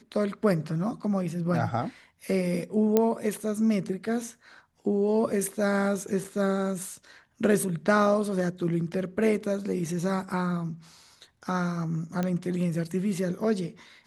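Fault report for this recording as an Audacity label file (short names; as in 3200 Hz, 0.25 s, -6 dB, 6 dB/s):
2.970000	2.970000	pop -9 dBFS
6.240000	6.250000	gap 5.3 ms
12.230000	12.230000	pop -16 dBFS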